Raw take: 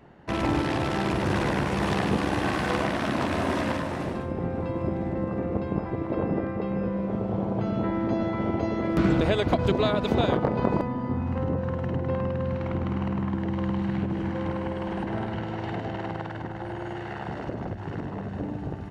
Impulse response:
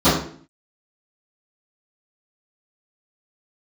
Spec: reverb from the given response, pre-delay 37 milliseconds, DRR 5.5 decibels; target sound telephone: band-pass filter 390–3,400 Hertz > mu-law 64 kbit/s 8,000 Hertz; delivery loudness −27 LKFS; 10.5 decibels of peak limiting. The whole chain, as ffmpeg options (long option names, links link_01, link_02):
-filter_complex "[0:a]alimiter=limit=-19dB:level=0:latency=1,asplit=2[link_01][link_02];[1:a]atrim=start_sample=2205,adelay=37[link_03];[link_02][link_03]afir=irnorm=-1:irlink=0,volume=-29.5dB[link_04];[link_01][link_04]amix=inputs=2:normalize=0,highpass=390,lowpass=3400,volume=4dB" -ar 8000 -c:a pcm_mulaw